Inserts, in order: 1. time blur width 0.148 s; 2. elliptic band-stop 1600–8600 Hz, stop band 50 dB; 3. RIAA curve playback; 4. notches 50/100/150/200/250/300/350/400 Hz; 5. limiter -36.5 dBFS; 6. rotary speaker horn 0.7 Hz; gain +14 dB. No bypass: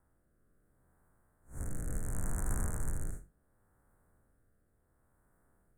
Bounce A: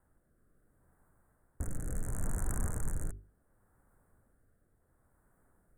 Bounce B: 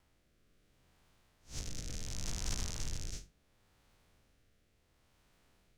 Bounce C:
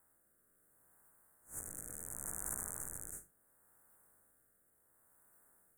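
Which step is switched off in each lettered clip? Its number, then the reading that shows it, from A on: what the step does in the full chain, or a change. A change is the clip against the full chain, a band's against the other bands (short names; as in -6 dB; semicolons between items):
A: 1, momentary loudness spread change -2 LU; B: 2, 8 kHz band +7.0 dB; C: 3, 125 Hz band -12.5 dB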